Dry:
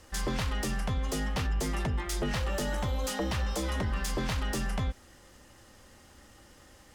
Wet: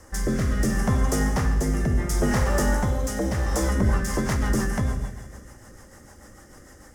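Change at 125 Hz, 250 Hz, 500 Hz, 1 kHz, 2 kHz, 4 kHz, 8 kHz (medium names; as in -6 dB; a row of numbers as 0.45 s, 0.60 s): +8.5 dB, +10.0 dB, +8.0 dB, +6.5 dB, +6.0 dB, -0.5 dB, +7.0 dB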